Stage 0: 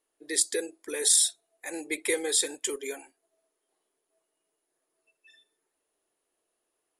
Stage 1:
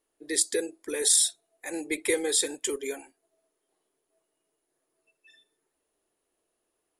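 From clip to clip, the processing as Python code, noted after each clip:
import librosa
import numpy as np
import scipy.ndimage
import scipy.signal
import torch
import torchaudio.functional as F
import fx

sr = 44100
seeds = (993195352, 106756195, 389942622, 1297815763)

y = fx.low_shelf(x, sr, hz=290.0, db=8.0)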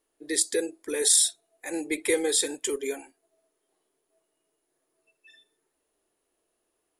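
y = fx.hpss(x, sr, part='harmonic', gain_db=3)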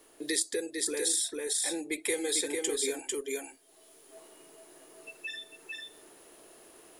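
y = fx.rider(x, sr, range_db=10, speed_s=2.0)
y = y + 10.0 ** (-4.5 / 20.0) * np.pad(y, (int(448 * sr / 1000.0), 0))[:len(y)]
y = fx.band_squash(y, sr, depth_pct=70)
y = y * 10.0 ** (-5.0 / 20.0)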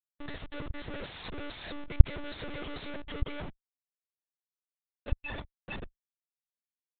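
y = fx.hpss(x, sr, part='harmonic', gain_db=-5)
y = fx.schmitt(y, sr, flips_db=-41.5)
y = fx.lpc_monotone(y, sr, seeds[0], pitch_hz=290.0, order=10)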